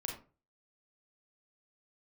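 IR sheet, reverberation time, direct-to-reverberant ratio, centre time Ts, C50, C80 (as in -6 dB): 0.35 s, 0.5 dB, 27 ms, 5.5 dB, 11.0 dB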